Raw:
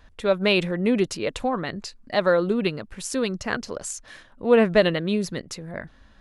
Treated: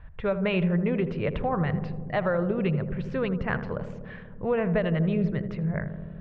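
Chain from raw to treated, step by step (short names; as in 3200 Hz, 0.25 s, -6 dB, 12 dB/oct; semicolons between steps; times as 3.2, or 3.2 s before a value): LPF 2500 Hz 24 dB/oct; resonant low shelf 190 Hz +7 dB, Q 3; compressor 5:1, threshold -23 dBFS, peak gain reduction 10 dB; darkening echo 81 ms, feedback 85%, low-pass 990 Hz, level -9.5 dB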